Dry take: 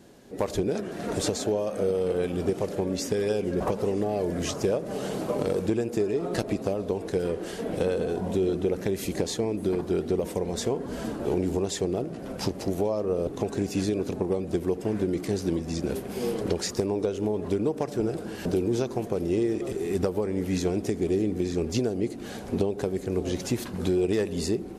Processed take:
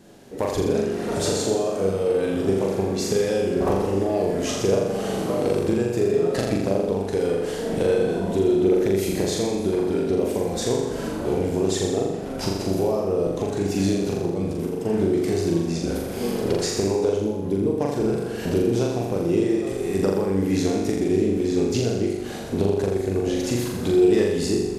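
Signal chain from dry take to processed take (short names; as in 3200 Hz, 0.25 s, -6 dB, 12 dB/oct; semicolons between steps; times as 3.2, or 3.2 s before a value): 13.94–14.76 negative-ratio compressor -29 dBFS, ratio -0.5; 17.16–17.79 spectral gain 560–9400 Hz -7 dB; on a send: flutter echo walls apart 7.1 m, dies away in 1 s; on the sum: gain +1.5 dB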